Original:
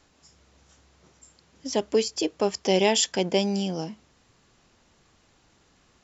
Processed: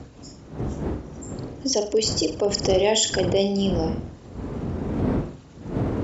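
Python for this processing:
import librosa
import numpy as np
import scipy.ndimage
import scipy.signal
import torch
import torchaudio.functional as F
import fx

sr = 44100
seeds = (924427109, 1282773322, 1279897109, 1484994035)

p1 = fx.envelope_sharpen(x, sr, power=1.5)
p2 = fx.dmg_wind(p1, sr, seeds[0], corner_hz=260.0, level_db=-35.0)
p3 = scipy.signal.sosfilt(scipy.signal.butter(2, 48.0, 'highpass', fs=sr, output='sos'), p2)
p4 = fx.over_compress(p3, sr, threshold_db=-32.0, ratio=-1.0)
p5 = p3 + (p4 * 10.0 ** (0.5 / 20.0))
p6 = fx.peak_eq(p5, sr, hz=180.0, db=-3.5, octaves=0.27)
y = p6 + fx.room_flutter(p6, sr, wall_m=7.9, rt60_s=0.36, dry=0)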